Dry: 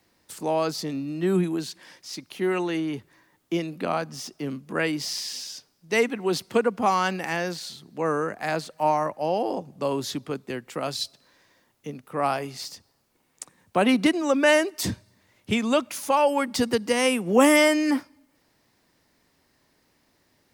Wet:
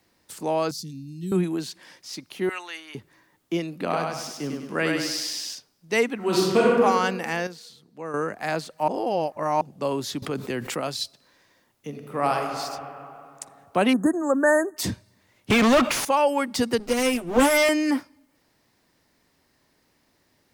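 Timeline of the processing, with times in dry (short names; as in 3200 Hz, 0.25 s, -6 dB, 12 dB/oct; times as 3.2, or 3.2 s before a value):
0.71–1.32 Chebyshev band-stop 160–5400 Hz
2.49–2.95 HPF 1200 Hz
3.7–5.55 thinning echo 0.1 s, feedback 49%, high-pass 190 Hz, level -3 dB
6.16–6.79 reverb throw, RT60 1.4 s, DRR -5 dB
7.47–8.14 gain -9 dB
8.88–9.61 reverse
10.22–10.81 fast leveller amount 70%
11.88–12.36 reverb throw, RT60 2.7 s, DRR 1 dB
13.93–14.77 brick-wall FIR band-stop 1900–6300 Hz
15.5–16.05 overdrive pedal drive 36 dB, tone 2200 Hz, clips at -10.5 dBFS
16.79–17.69 minimum comb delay 8.1 ms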